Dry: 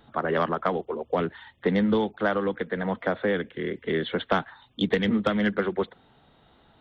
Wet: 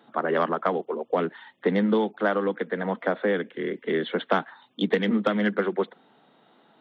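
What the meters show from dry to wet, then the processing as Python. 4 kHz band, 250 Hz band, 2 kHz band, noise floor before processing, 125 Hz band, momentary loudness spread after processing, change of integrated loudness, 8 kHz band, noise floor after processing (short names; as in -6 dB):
-1.5 dB, 0.0 dB, +0.5 dB, -61 dBFS, -2.5 dB, 7 LU, +0.5 dB, n/a, -61 dBFS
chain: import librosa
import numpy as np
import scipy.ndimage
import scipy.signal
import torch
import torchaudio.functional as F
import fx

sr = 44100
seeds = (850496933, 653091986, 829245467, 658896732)

y = scipy.signal.sosfilt(scipy.signal.butter(4, 190.0, 'highpass', fs=sr, output='sos'), x)
y = fx.high_shelf(y, sr, hz=3600.0, db=-6.5)
y = y * librosa.db_to_amplitude(1.5)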